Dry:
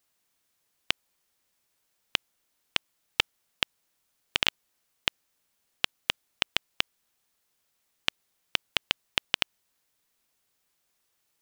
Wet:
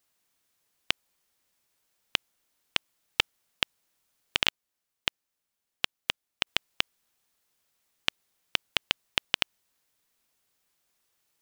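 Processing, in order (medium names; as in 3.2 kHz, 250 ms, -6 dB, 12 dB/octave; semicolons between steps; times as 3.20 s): 4.48–6.47 s: upward expansion 1.5:1, over -39 dBFS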